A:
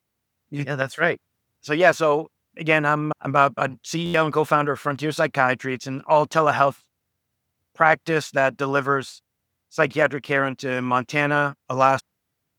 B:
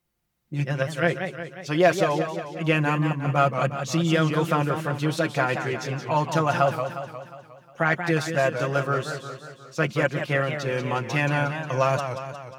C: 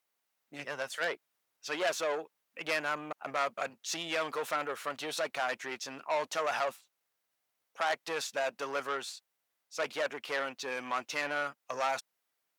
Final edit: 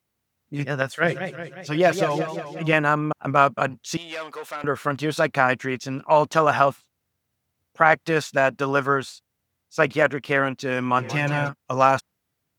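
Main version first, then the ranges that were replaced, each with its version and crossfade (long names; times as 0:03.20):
A
0:01.04–0:02.73: punch in from B
0:03.97–0:04.64: punch in from C
0:10.99–0:11.49: punch in from B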